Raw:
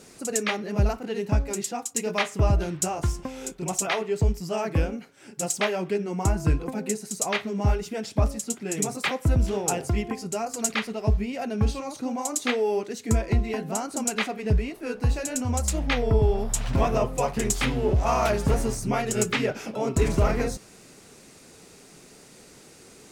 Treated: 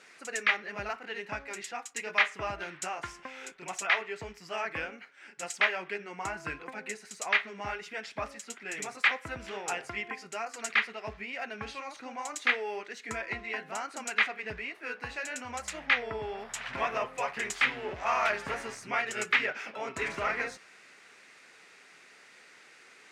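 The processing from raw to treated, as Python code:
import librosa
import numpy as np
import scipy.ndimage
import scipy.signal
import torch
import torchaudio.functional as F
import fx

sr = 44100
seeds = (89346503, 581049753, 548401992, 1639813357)

y = fx.bandpass_q(x, sr, hz=1900.0, q=1.9)
y = y * librosa.db_to_amplitude(5.5)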